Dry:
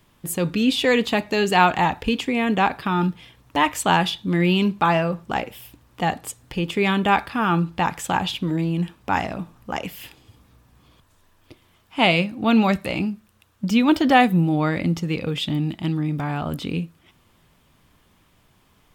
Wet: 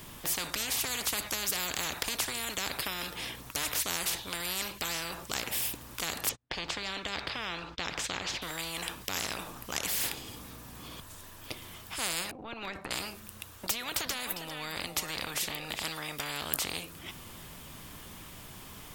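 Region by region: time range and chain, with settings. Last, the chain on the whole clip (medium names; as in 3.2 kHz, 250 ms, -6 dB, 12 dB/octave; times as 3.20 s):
6.29–8.42 s: gate -44 dBFS, range -40 dB + distance through air 170 m
12.31–12.91 s: band-pass filter 290 Hz, Q 1.7 + transient shaper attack -10 dB, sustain +8 dB
13.66–15.83 s: compression, threshold -25 dBFS + delay 402 ms -16.5 dB
whole clip: treble shelf 5.1 kHz +9 dB; spectrum-flattening compressor 10:1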